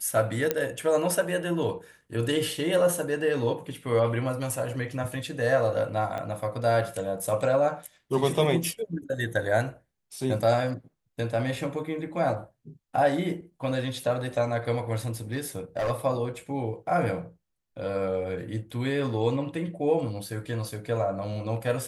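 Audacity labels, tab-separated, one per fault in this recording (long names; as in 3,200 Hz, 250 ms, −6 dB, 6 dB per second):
0.510000	0.510000	click −10 dBFS
6.180000	6.180000	click −21 dBFS
15.320000	15.910000	clipping −24 dBFS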